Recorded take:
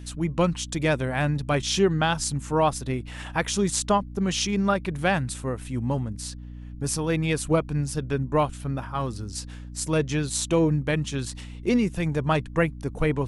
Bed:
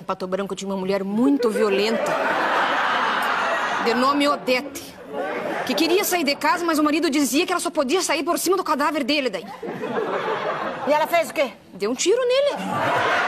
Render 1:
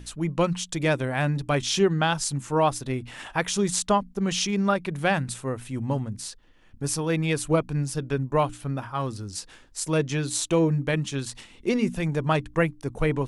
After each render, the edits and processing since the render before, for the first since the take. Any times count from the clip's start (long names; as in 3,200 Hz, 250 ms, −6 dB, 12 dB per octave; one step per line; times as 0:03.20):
mains-hum notches 60/120/180/240/300 Hz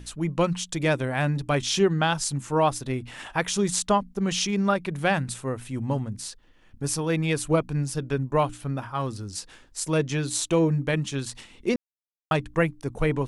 0:11.76–0:12.31: silence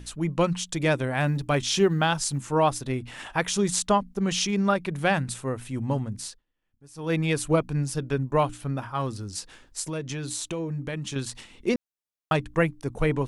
0:01.19–0:02.50: floating-point word with a short mantissa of 6 bits
0:06.25–0:07.13: duck −23 dB, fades 0.19 s
0:09.81–0:11.16: downward compressor 4 to 1, threshold −29 dBFS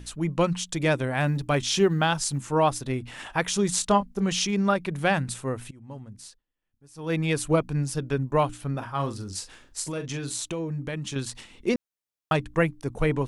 0:03.75–0:04.26: double-tracking delay 25 ms −11 dB
0:05.71–0:07.36: fade in, from −22.5 dB
0:08.70–0:10.45: double-tracking delay 42 ms −9 dB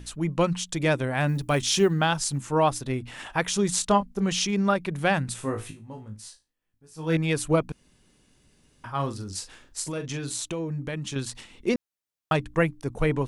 0:01.29–0:01.91: high-shelf EQ 9,600 Hz +11.5 dB
0:05.36–0:07.17: flutter between parallel walls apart 3.2 metres, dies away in 0.24 s
0:07.72–0:08.84: fill with room tone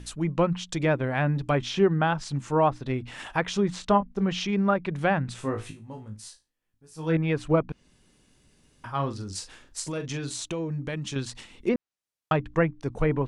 treble cut that deepens with the level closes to 1,900 Hz, closed at −20 dBFS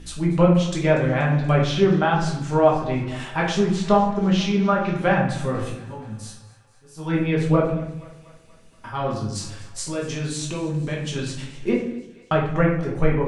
feedback echo with a high-pass in the loop 239 ms, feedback 65%, level −19 dB
rectangular room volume 130 cubic metres, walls mixed, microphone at 1.2 metres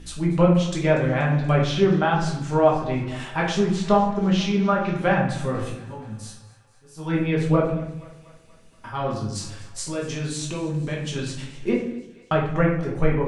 level −1 dB